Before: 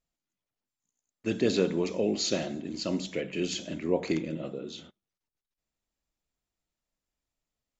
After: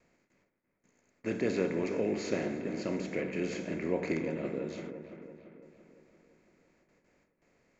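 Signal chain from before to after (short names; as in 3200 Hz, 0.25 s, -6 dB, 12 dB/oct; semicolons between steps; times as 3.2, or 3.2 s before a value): per-bin compression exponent 0.6; gate with hold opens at -53 dBFS; resonant high shelf 2700 Hz -7 dB, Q 3; dark delay 0.339 s, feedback 53%, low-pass 2100 Hz, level -9 dB; gain -7 dB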